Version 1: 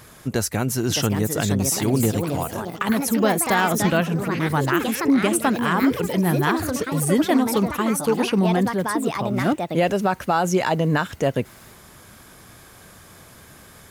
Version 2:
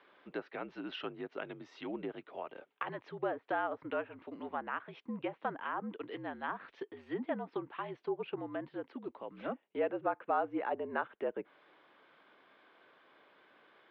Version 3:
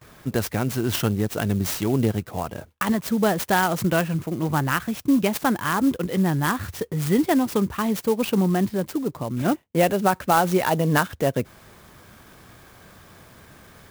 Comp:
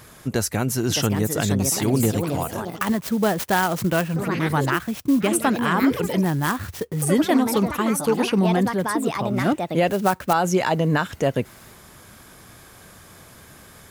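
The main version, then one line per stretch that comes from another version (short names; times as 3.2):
1
2.81–4.16 from 3
4.75–5.25 from 3, crossfade 0.10 s
6.25–7.02 from 3
9.89–10.33 from 3
not used: 2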